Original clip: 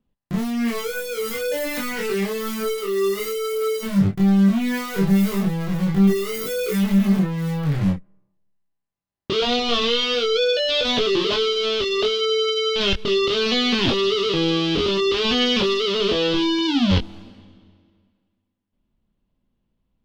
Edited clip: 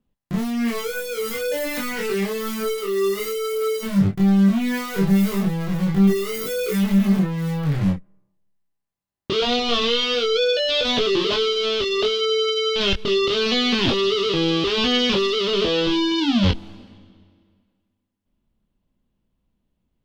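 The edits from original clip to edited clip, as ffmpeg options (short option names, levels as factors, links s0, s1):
-filter_complex "[0:a]asplit=2[s0][s1];[s0]atrim=end=14.642[s2];[s1]atrim=start=15.108[s3];[s2][s3]acrossfade=d=0.004:c1=hsin:c2=hsin"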